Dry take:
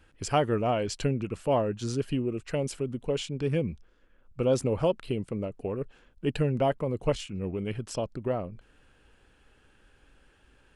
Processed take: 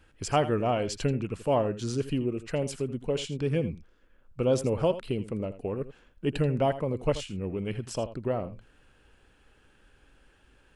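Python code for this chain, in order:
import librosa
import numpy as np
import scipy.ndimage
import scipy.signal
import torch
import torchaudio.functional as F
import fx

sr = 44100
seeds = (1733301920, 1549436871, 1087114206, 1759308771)

y = x + 10.0 ** (-14.0 / 20.0) * np.pad(x, (int(82 * sr / 1000.0), 0))[:len(x)]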